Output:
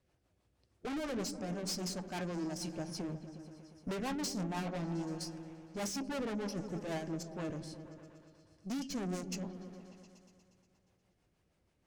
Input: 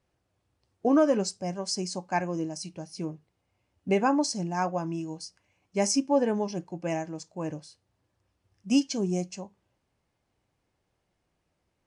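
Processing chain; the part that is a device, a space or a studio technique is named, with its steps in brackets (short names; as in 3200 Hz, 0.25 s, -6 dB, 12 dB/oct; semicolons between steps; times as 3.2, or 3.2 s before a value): overdriven rotary cabinet (tube stage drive 38 dB, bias 0.45; rotary speaker horn 6.3 Hz); repeats that get brighter 0.119 s, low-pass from 200 Hz, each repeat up 1 oct, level -6 dB; gain +3.5 dB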